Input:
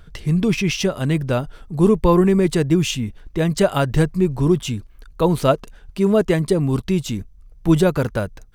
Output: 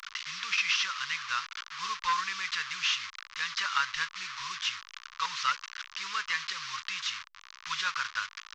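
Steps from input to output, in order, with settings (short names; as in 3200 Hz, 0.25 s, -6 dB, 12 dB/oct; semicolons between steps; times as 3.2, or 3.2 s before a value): delta modulation 32 kbps, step -27 dBFS; elliptic high-pass 1100 Hz, stop band 40 dB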